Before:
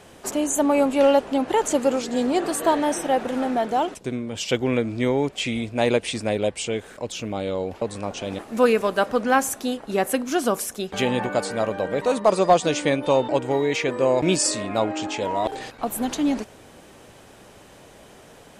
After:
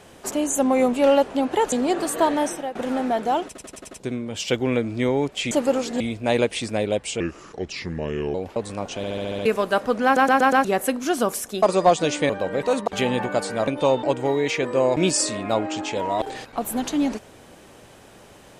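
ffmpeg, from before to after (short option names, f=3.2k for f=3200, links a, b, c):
-filter_complex "[0:a]asplit=30[a][b][c][d][e][f][g][h][i][j][k][l][m][n][o][p][q][r][s][t][u][v][w][x][y][z][aa][ab][ac][ad];[a]atrim=end=0.584[ae];[b]atrim=start=0.58:end=0.9,asetpts=PTS-STARTPTS,asetrate=40131,aresample=44100[af];[c]atrim=start=0.896:end=1.692[ag];[d]atrim=start=2.178:end=3.21,asetpts=PTS-STARTPTS,afade=t=out:st=0.712:d=0.32:silence=0.149624[ah];[e]atrim=start=3.21:end=4.012,asetpts=PTS-STARTPTS,afade=t=in:d=0.004:c=hsin:silence=0.149624[ai];[f]atrim=start=3.918:end=4.012[aj];[g]atrim=start=3.918:end=4.012[ak];[h]atrim=start=3.918:end=4.012[al];[i]atrim=start=3.918:end=4.012[am];[j]atrim=start=3.918:end=5.522[an];[k]atrim=start=1.688:end=2.182[ao];[l]atrim=start=5.518:end=6.724[ap];[m]atrim=start=6.72:end=7.6,asetpts=PTS-STARTPTS,asetrate=33957,aresample=44100[aq];[n]atrim=start=7.596:end=8.292[ar];[o]atrim=start=8.218:end=8.292[as];[p]atrim=start=8.218:end=8.292[at];[q]atrim=start=8.218:end=8.292[au];[r]atrim=start=8.218:end=8.292[av];[s]atrim=start=8.218:end=8.292[aw];[t]atrim=start=8.218:end=8.292[ax];[u]atrim=start=8.708:end=9.422[ay];[v]atrim=start=9.298:end=9.422[az];[w]atrim=start=9.298:end=9.422[ba];[x]atrim=start=9.298:end=9.422[bb];[y]atrim=start=9.298:end=9.422[bc];[z]atrim=start=9.898:end=10.882[bd];[aa]atrim=start=12.258:end=12.932[be];[ab]atrim=start=11.678:end=12.262[bf];[ac]atrim=start=10.878:end=11.682[bg];[ad]atrim=start=12.928[bh];[ae][af]acrossfade=d=0.004:c1=hsin:c2=hsin[bi];[bi][ag]acrossfade=d=0.004:c1=hsin:c2=hsin[bj];[ah][ai]concat=n=2:v=0:a=1[bk];[bj][bk]acrossfade=d=0.004:c1=hsin:c2=hsin[bl];[bl][aj]acrossfade=d=0.004:c1=hsin:c2=hsin[bm];[bm][ak]acrossfade=d=0.004:c1=hsin:c2=hsin[bn];[bn][al]acrossfade=d=0.004:c1=hsin:c2=hsin[bo];[bo][am]acrossfade=d=0.004:c1=hsin:c2=hsin[bp];[bp][an]acrossfade=d=0.004:c1=hsin:c2=hsin[bq];[bq][ao]acrossfade=d=0.004:c1=hsin:c2=hsin[br];[br][ap]acrossfade=d=0.004:c1=hsin:c2=hsin[bs];[bs][aq]acrossfade=d=0.004:c1=hsin:c2=hsin[bt];[bt][ar]acrossfade=d=0.004:c1=hsin:c2=hsin[bu];[bu][as]acrossfade=d=0.004:c1=hsin:c2=hsin[bv];[bv][at]acrossfade=d=0.004:c1=hsin:c2=hsin[bw];[bw][au]acrossfade=d=0.004:c1=hsin:c2=hsin[bx];[bx][av]acrossfade=d=0.004:c1=hsin:c2=hsin[by];[by][aw]acrossfade=d=0.004:c1=hsin:c2=hsin[bz];[bz][ax]acrossfade=d=0.004:c1=hsin:c2=hsin[ca];[ca][ay]acrossfade=d=0.004:c1=hsin:c2=hsin[cb];[cb][az]acrossfade=d=0.004:c1=hsin:c2=hsin[cc];[cc][ba]acrossfade=d=0.004:c1=hsin:c2=hsin[cd];[cd][bb]acrossfade=d=0.004:c1=hsin:c2=hsin[ce];[ce][bc]acrossfade=d=0.004:c1=hsin:c2=hsin[cf];[cf][bd]acrossfade=d=0.004:c1=hsin:c2=hsin[cg];[cg][be]acrossfade=d=0.004:c1=hsin:c2=hsin[ch];[ch][bf]acrossfade=d=0.004:c1=hsin:c2=hsin[ci];[ci][bg]acrossfade=d=0.004:c1=hsin:c2=hsin[cj];[cj][bh]acrossfade=d=0.004:c1=hsin:c2=hsin"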